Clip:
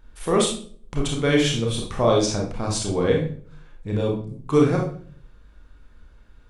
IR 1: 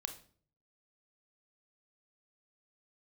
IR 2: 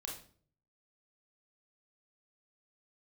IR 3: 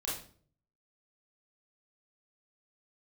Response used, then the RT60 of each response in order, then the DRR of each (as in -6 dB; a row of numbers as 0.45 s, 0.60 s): 2; 0.50 s, 0.50 s, 0.50 s; 7.0 dB, -1.0 dB, -6.5 dB